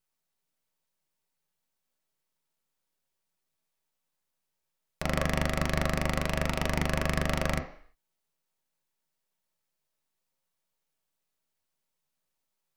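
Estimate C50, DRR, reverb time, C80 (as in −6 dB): 10.0 dB, 2.0 dB, 0.55 s, 13.5 dB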